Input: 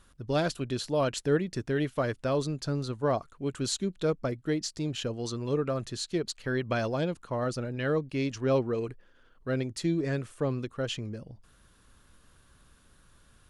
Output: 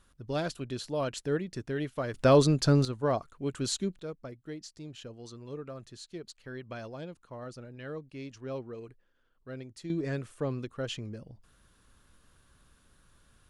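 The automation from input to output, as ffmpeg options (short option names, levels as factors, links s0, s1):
-af "asetnsamples=n=441:p=0,asendcmd='2.14 volume volume 8dB;2.85 volume volume -1dB;3.99 volume volume -12dB;9.9 volume volume -3dB',volume=0.596"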